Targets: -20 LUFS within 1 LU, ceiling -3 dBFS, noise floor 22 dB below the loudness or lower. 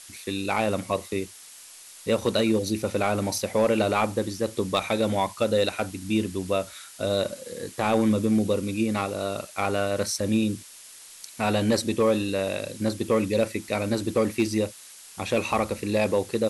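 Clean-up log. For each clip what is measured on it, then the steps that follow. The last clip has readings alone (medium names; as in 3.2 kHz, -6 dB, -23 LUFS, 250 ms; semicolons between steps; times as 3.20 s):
clipped samples 0.4%; clipping level -14.0 dBFS; noise floor -47 dBFS; noise floor target -48 dBFS; loudness -26.0 LUFS; peak level -14.0 dBFS; loudness target -20.0 LUFS
-> clip repair -14 dBFS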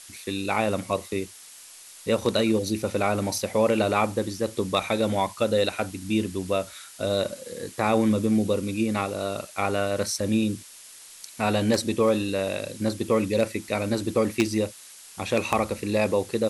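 clipped samples 0.0%; noise floor -47 dBFS; noise floor target -48 dBFS
-> noise reduction 6 dB, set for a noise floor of -47 dBFS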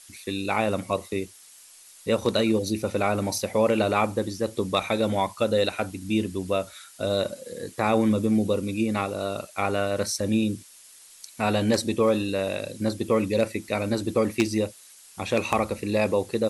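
noise floor -50 dBFS; loudness -25.5 LUFS; peak level -5.0 dBFS; loudness target -20.0 LUFS
-> trim +5.5 dB; peak limiter -3 dBFS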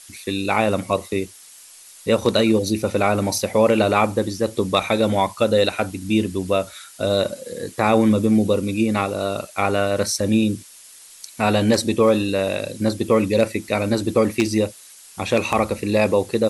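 loudness -20.5 LUFS; peak level -3.0 dBFS; noise floor -45 dBFS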